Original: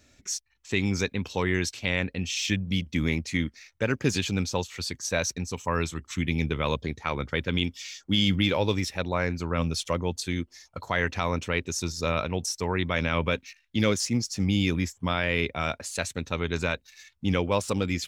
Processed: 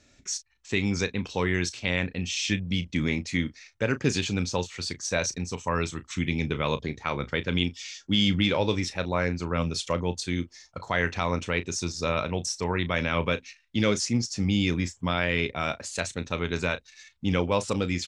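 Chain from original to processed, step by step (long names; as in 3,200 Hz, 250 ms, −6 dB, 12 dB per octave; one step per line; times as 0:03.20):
low-pass filter 8,700 Hz 24 dB per octave
parametric band 78 Hz −5 dB 0.26 octaves
double-tracking delay 34 ms −13 dB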